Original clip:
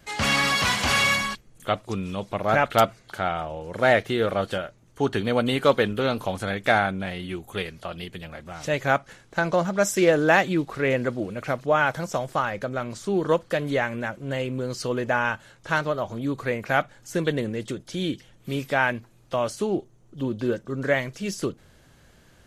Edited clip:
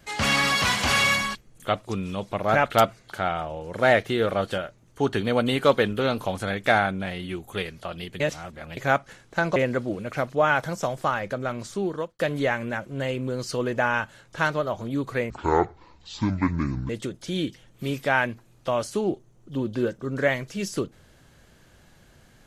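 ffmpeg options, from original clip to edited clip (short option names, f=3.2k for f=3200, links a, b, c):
-filter_complex "[0:a]asplit=7[a][b][c][d][e][f][g];[a]atrim=end=8.202[h];[b]atrim=start=8.198:end=8.772,asetpts=PTS-STARTPTS,areverse[i];[c]atrim=start=8.768:end=9.562[j];[d]atrim=start=10.868:end=13.5,asetpts=PTS-STARTPTS,afade=t=out:st=2.132:d=0.5[k];[e]atrim=start=13.5:end=16.614,asetpts=PTS-STARTPTS,afade=t=in:d=0.004:c=hsin[l];[f]atrim=start=16.61:end=17.55,asetpts=PTS-STARTPTS,asetrate=26019,aresample=44100,atrim=end_sample=70261,asetpts=PTS-STARTPTS[m];[g]atrim=start=17.546[n];[h][i]acrossfade=d=0.004:c1=hsin:c2=hsin[o];[o][j]acrossfade=d=0.004:c1=hsin:c2=hsin[p];[k][l]concat=n=2:v=0:a=1[q];[p][q]acrossfade=d=0.004:c1=hsin:c2=hsin[r];[r][m]acrossfade=d=0.004:c1=hsin:c2=hsin[s];[s][n]acrossfade=d=0.004:c1=hsin:c2=hsin"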